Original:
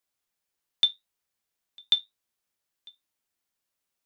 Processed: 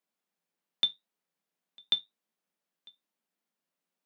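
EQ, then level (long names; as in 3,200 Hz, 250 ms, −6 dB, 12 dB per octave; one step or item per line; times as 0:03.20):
Chebyshev high-pass with heavy ripple 160 Hz, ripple 3 dB
bass and treble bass −1 dB, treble −5 dB
low-shelf EQ 280 Hz +11 dB
0.0 dB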